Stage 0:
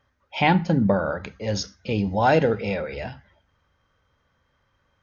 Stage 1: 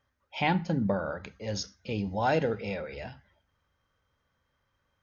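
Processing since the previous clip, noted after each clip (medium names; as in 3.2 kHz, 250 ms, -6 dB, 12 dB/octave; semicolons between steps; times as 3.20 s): treble shelf 4.9 kHz +4.5 dB; trim -8 dB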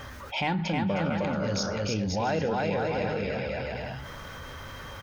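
in parallel at -9 dB: saturation -28.5 dBFS, distortion -9 dB; on the sum: bouncing-ball echo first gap 310 ms, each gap 0.7×, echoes 5; level flattener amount 70%; trim -4.5 dB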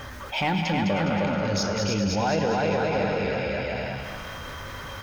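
feedback comb 50 Hz, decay 1.5 s, harmonics all, mix 60%; in parallel at -11 dB: saturation -33 dBFS, distortion -13 dB; on the sum: thinning echo 206 ms, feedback 54%, high-pass 510 Hz, level -5.5 dB; trim +8 dB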